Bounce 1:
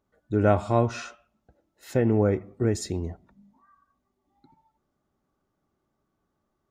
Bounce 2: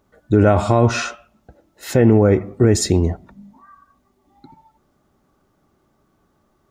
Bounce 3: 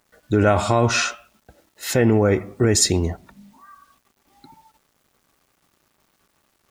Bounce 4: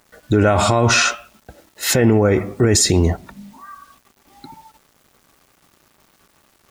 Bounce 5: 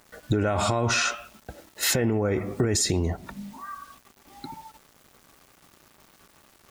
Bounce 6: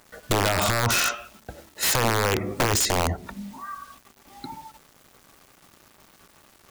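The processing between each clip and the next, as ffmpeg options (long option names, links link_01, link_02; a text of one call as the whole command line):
ffmpeg -i in.wav -af "alimiter=level_in=16.5dB:limit=-1dB:release=50:level=0:latency=1,volume=-2.5dB" out.wav
ffmpeg -i in.wav -af "tiltshelf=frequency=1100:gain=-5,acrusher=bits=9:mix=0:aa=0.000001" out.wav
ffmpeg -i in.wav -af "alimiter=level_in=12.5dB:limit=-1dB:release=50:level=0:latency=1,volume=-4dB" out.wav
ffmpeg -i in.wav -af "acompressor=threshold=-21dB:ratio=6" out.wav
ffmpeg -i in.wav -af "aeval=exprs='(mod(6.68*val(0)+1,2)-1)/6.68':channel_layout=same,bandreject=frequency=73.31:width_type=h:width=4,bandreject=frequency=146.62:width_type=h:width=4,bandreject=frequency=219.93:width_type=h:width=4,bandreject=frequency=293.24:width_type=h:width=4,bandreject=frequency=366.55:width_type=h:width=4,bandreject=frequency=439.86:width_type=h:width=4,volume=2dB" out.wav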